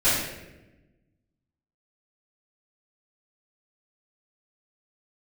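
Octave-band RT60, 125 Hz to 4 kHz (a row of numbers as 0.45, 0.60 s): 1.7, 1.7, 1.2, 0.85, 0.95, 0.70 s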